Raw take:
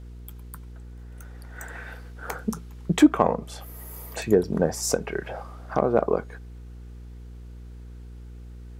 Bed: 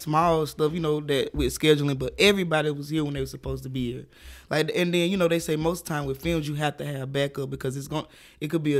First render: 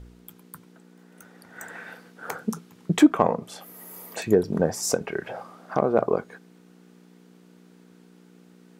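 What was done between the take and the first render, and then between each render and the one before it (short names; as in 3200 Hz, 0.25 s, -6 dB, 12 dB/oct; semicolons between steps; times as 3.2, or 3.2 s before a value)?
de-hum 60 Hz, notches 2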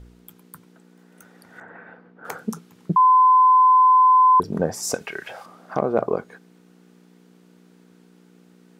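1.6–2.25 LPF 1400 Hz; 2.96–4.4 bleep 1020 Hz -10.5 dBFS; 4.94–5.46 tilt shelf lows -9 dB, about 1100 Hz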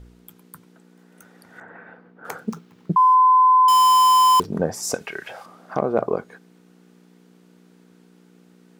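2.4–3.15 median filter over 5 samples; 3.68–4.46 switching dead time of 0.12 ms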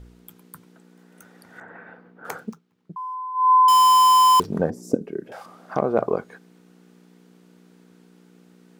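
2.39–3.52 dip -17.5 dB, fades 0.18 s; 4.7–5.32 EQ curve 110 Hz 0 dB, 180 Hz +9 dB, 290 Hz +13 dB, 520 Hz +1 dB, 790 Hz -15 dB, 2400 Hz -22 dB, 12000 Hz -16 dB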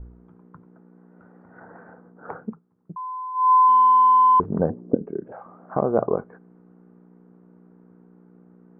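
LPF 1300 Hz 24 dB/oct; low shelf 85 Hz +8.5 dB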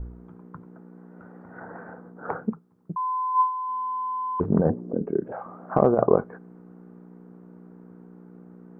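negative-ratio compressor -21 dBFS, ratio -0.5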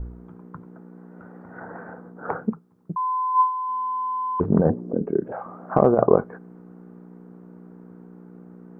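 gain +2.5 dB; limiter -1 dBFS, peak gain reduction 1 dB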